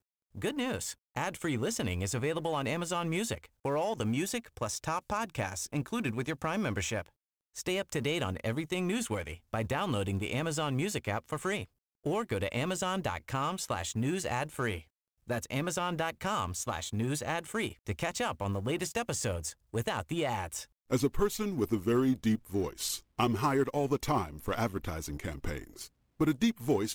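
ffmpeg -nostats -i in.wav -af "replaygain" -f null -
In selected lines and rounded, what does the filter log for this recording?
track_gain = +14.1 dB
track_peak = 0.107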